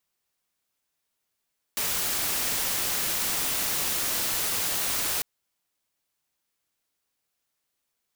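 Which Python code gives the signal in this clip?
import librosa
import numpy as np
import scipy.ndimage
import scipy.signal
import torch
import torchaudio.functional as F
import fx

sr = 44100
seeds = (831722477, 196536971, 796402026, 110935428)

y = fx.noise_colour(sr, seeds[0], length_s=3.45, colour='white', level_db=-27.5)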